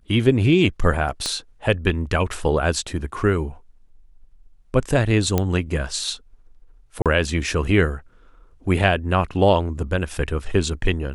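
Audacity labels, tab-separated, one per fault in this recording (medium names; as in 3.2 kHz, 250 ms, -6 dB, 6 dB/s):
1.260000	1.260000	pop -11 dBFS
5.380000	5.380000	pop -6 dBFS
7.020000	7.060000	dropout 37 ms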